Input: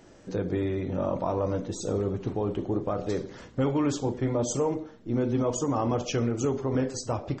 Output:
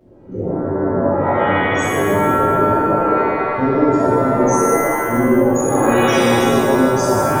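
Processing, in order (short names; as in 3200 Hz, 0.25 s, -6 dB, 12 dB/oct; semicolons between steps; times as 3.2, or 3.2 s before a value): formant sharpening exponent 3; shimmer reverb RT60 1.8 s, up +7 st, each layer -2 dB, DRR -11.5 dB; gain -1.5 dB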